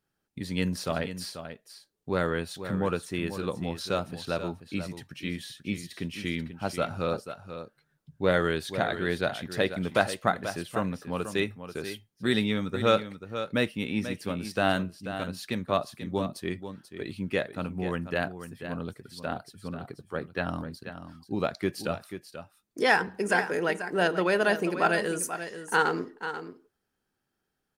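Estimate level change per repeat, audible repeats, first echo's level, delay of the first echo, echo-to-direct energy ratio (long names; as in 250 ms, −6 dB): repeats not evenly spaced, 1, −10.5 dB, 487 ms, −10.5 dB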